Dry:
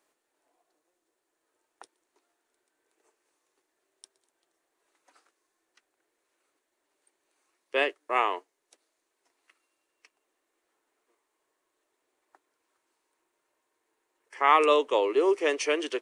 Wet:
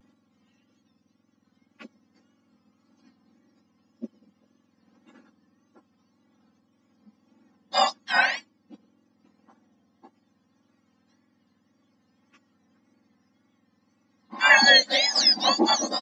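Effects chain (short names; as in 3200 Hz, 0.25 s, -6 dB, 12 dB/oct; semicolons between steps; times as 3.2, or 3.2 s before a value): spectrum mirrored in octaves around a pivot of 1400 Hz; comb 3.7 ms, depth 88%; vibrato 1.8 Hz 76 cents; gain +5.5 dB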